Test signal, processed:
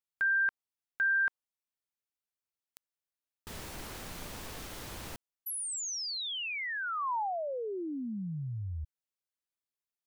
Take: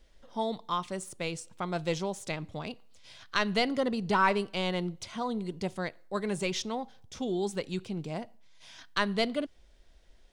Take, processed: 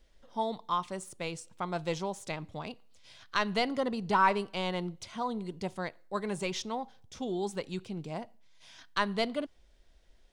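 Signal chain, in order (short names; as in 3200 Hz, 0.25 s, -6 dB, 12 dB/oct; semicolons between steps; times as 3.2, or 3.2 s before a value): dynamic EQ 940 Hz, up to +5 dB, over -47 dBFS, Q 1.7; gain -3 dB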